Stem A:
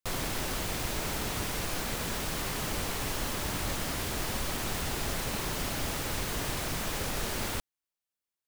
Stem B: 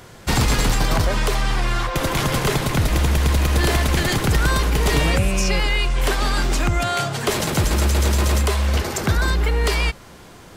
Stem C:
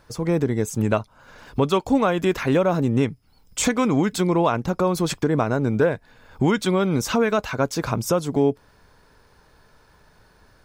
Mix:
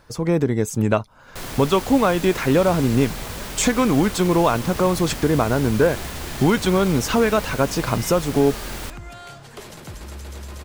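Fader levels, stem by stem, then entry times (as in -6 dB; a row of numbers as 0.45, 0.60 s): +0.5, -17.5, +2.0 dB; 1.30, 2.30, 0.00 s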